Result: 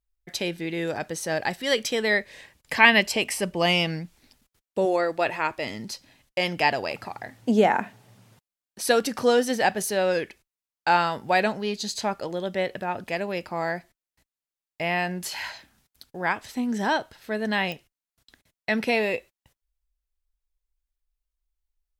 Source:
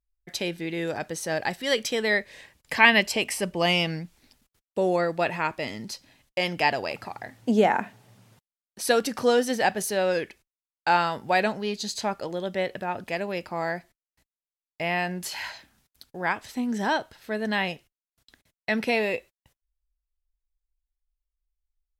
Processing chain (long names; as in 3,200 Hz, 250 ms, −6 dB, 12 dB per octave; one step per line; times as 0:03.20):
0:04.85–0:05.67: parametric band 180 Hz −13 dB 0.38 octaves
digital clicks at 0:17.72, −20 dBFS
level +1 dB